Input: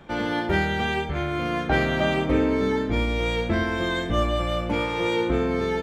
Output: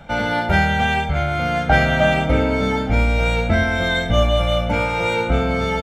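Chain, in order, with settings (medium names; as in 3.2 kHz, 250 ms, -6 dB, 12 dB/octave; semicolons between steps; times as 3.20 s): comb 1.4 ms, depth 75%; delay 1175 ms -20.5 dB; trim +4.5 dB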